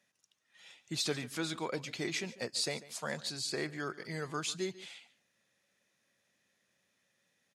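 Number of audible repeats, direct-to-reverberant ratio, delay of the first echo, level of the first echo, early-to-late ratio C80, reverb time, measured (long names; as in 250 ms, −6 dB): 1, no reverb audible, 144 ms, −18.0 dB, no reverb audible, no reverb audible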